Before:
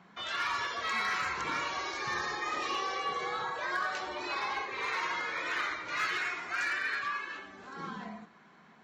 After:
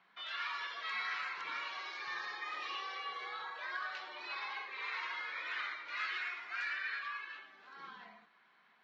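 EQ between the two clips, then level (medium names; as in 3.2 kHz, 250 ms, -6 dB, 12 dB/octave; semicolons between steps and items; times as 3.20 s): band-pass filter 5.7 kHz, Q 1; distance through air 380 m; +7.5 dB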